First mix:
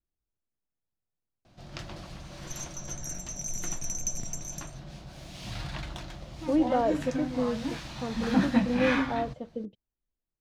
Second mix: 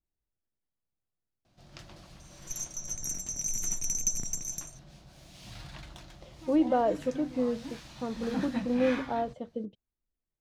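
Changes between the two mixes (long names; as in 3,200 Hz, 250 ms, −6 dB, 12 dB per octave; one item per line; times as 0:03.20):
first sound −9.0 dB
master: add high-shelf EQ 5,600 Hz +6.5 dB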